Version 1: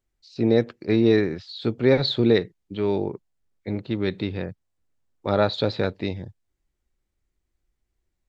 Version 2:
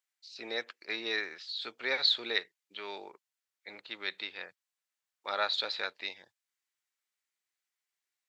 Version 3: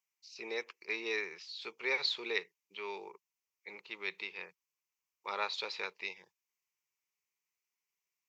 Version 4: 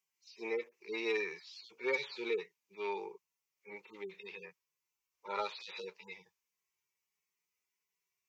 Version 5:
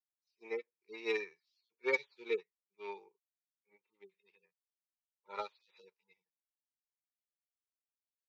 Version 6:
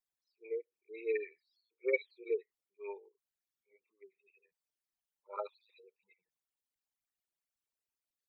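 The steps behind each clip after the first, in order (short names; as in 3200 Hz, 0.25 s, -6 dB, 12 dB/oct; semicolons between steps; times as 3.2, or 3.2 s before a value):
HPF 1400 Hz 12 dB/oct
ripple EQ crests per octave 0.78, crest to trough 11 dB; gain -3.5 dB
median-filter separation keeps harmonic; soft clip -27 dBFS, distortion -24 dB; gain +5 dB
upward expander 2.5:1, over -51 dBFS; gain +3 dB
formant sharpening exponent 3; gain +1 dB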